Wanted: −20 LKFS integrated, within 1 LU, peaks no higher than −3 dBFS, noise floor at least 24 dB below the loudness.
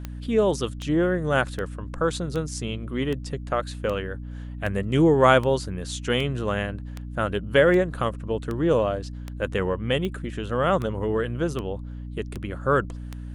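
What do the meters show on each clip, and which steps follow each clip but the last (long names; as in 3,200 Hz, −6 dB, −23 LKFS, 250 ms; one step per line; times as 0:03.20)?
number of clicks 18; mains hum 60 Hz; hum harmonics up to 300 Hz; level of the hum −33 dBFS; integrated loudness −25.0 LKFS; sample peak −4.0 dBFS; target loudness −20.0 LKFS
→ click removal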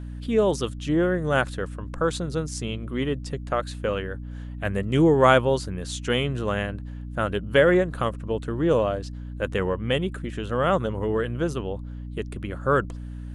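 number of clicks 0; mains hum 60 Hz; hum harmonics up to 300 Hz; level of the hum −33 dBFS
→ mains-hum notches 60/120/180/240/300 Hz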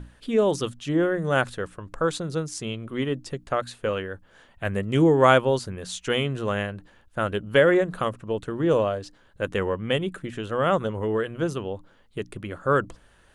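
mains hum none found; integrated loudness −25.0 LKFS; sample peak −4.0 dBFS; target loudness −20.0 LKFS
→ level +5 dB
brickwall limiter −3 dBFS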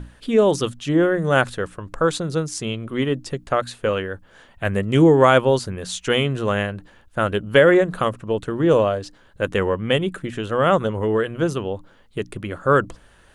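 integrated loudness −20.5 LKFS; sample peak −3.0 dBFS; background noise floor −53 dBFS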